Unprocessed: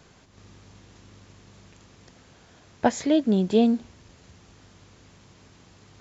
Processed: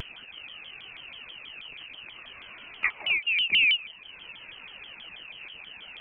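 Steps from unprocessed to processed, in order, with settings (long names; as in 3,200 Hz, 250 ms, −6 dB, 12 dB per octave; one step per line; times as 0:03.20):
downward compressor 6 to 1, threshold −23 dBFS, peak gain reduction 9 dB
on a send at −23.5 dB: convolution reverb RT60 0.65 s, pre-delay 88 ms
on the sum: phase shifter 0.55 Hz, delay 2.9 ms, feedback 45%
voice inversion scrambler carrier 2,900 Hz
upward compression, threshold −36 dBFS
pitch modulation by a square or saw wave saw down 6.2 Hz, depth 250 cents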